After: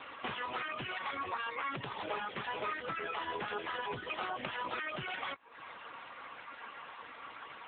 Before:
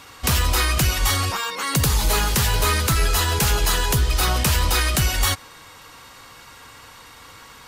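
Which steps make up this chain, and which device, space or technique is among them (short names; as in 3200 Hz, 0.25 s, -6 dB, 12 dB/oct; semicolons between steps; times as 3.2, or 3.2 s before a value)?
reverb removal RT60 0.54 s; 0.96–1.4 dynamic EQ 3000 Hz, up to -6 dB, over -44 dBFS, Q 7.7; voicemail (BPF 300–3100 Hz; compressor 6:1, threshold -36 dBFS, peak gain reduction 14.5 dB; gain +3 dB; AMR-NB 6.7 kbps 8000 Hz)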